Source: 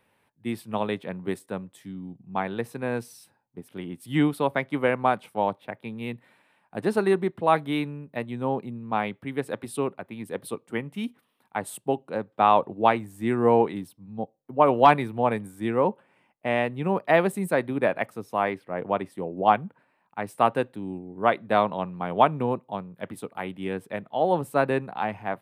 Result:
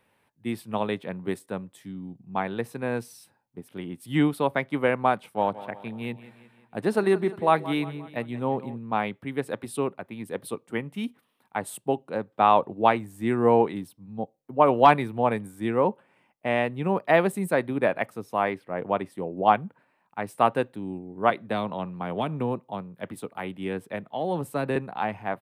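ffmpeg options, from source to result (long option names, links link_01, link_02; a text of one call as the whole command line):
ffmpeg -i in.wav -filter_complex "[0:a]asplit=3[link_01][link_02][link_03];[link_01]afade=type=out:start_time=5.37:duration=0.02[link_04];[link_02]aecho=1:1:176|352|528|704|880:0.15|0.0763|0.0389|0.0198|0.0101,afade=type=in:start_time=5.37:duration=0.02,afade=type=out:start_time=8.77:duration=0.02[link_05];[link_03]afade=type=in:start_time=8.77:duration=0.02[link_06];[link_04][link_05][link_06]amix=inputs=3:normalize=0,asettb=1/sr,asplit=3[link_07][link_08][link_09];[link_07]atrim=end=21.304[link_10];[link_08]atrim=start=21.3:end=24.76,asetpts=PTS-STARTPTS,afade=type=in:duration=0.004:curve=qsin,afade=type=out:start_time=3.456:duration=0.004:curve=qsin,acrossover=split=330|3000[link_11][link_12][link_13];[link_12]acompressor=threshold=-26dB:ratio=6:attack=3.2:release=140:knee=2.83:detection=peak[link_14];[link_11][link_14][link_13]amix=inputs=3:normalize=0[link_15];[link_09]atrim=start=24.756[link_16];[link_10][link_15]acrossfade=duration=0.004:curve1=hsin:curve2=qsin[link_17];[link_17][link_16]acrossfade=duration=0.004:curve1=qsin:curve2=hsin" out.wav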